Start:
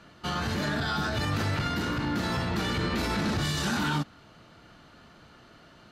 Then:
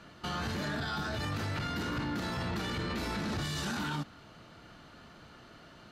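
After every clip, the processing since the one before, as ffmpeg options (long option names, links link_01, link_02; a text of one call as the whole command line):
ffmpeg -i in.wav -af "alimiter=level_in=3dB:limit=-24dB:level=0:latency=1:release=26,volume=-3dB" out.wav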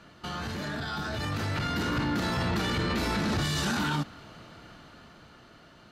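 ffmpeg -i in.wav -af "dynaudnorm=framelen=220:gausssize=13:maxgain=6.5dB" out.wav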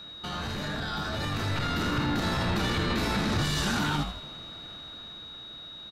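ffmpeg -i in.wav -filter_complex "[0:a]aeval=exprs='val(0)+0.00794*sin(2*PI*3800*n/s)':channel_layout=same,asplit=6[link_01][link_02][link_03][link_04][link_05][link_06];[link_02]adelay=81,afreqshift=-100,volume=-7.5dB[link_07];[link_03]adelay=162,afreqshift=-200,volume=-14.8dB[link_08];[link_04]adelay=243,afreqshift=-300,volume=-22.2dB[link_09];[link_05]adelay=324,afreqshift=-400,volume=-29.5dB[link_10];[link_06]adelay=405,afreqshift=-500,volume=-36.8dB[link_11];[link_01][link_07][link_08][link_09][link_10][link_11]amix=inputs=6:normalize=0" out.wav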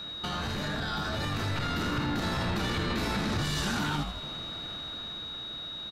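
ffmpeg -i in.wav -af "acompressor=threshold=-37dB:ratio=2,volume=4.5dB" out.wav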